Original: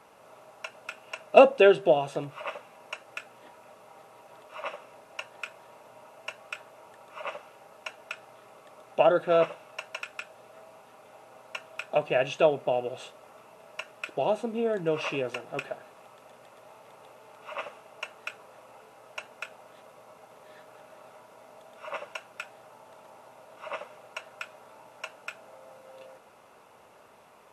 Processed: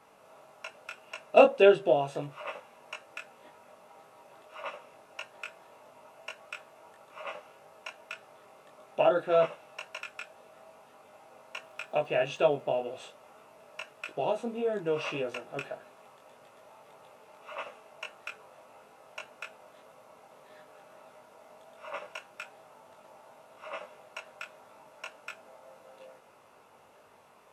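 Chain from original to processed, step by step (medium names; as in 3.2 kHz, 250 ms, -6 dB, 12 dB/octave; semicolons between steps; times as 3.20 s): 11.62–12.60 s: crackle 57 per s -49 dBFS; chorus 1.7 Hz, delay 19.5 ms, depth 2.1 ms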